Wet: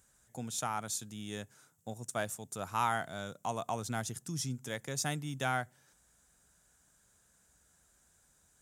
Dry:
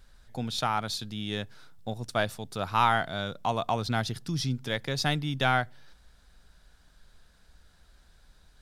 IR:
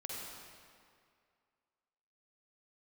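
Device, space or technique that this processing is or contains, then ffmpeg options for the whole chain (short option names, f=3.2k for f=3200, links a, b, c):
budget condenser microphone: -af "highpass=90,highshelf=f=5.6k:t=q:w=3:g=9,volume=-7.5dB"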